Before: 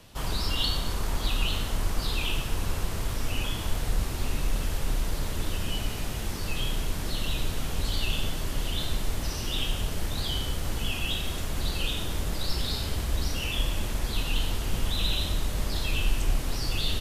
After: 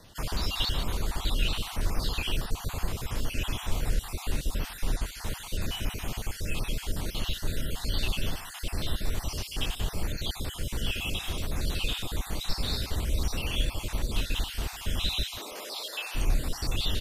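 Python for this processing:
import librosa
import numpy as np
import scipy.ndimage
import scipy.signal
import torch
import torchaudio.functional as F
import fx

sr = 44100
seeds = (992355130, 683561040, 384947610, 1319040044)

p1 = fx.spec_dropout(x, sr, seeds[0], share_pct=35)
p2 = fx.highpass(p1, sr, hz=fx.line((15.36, 290.0), (16.14, 610.0)), slope=24, at=(15.36, 16.14), fade=0.02)
y = p2 + fx.echo_single(p2, sr, ms=150, db=-18.5, dry=0)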